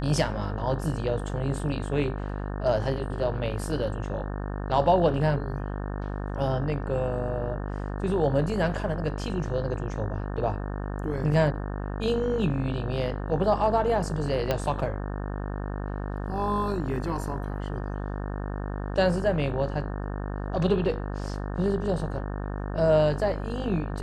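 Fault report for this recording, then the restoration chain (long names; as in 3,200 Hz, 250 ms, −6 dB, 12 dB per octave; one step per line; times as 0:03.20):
mains buzz 50 Hz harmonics 36 −32 dBFS
0:14.51: click −11 dBFS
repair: click removal
hum removal 50 Hz, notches 36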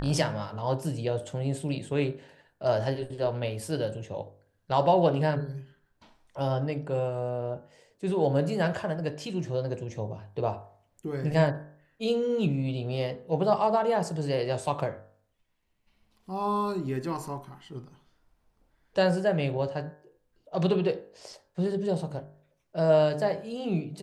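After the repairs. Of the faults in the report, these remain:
0:14.51: click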